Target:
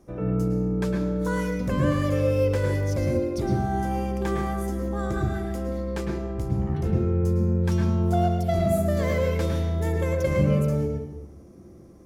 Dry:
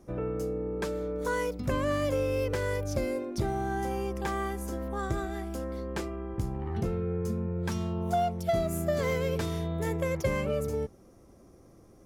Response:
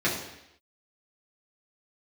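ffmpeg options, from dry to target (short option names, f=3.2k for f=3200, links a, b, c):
-filter_complex "[0:a]asplit=2[a][b];[1:a]atrim=start_sample=2205,lowshelf=f=260:g=9.5,adelay=103[c];[b][c]afir=irnorm=-1:irlink=0,volume=-14.5dB[d];[a][d]amix=inputs=2:normalize=0"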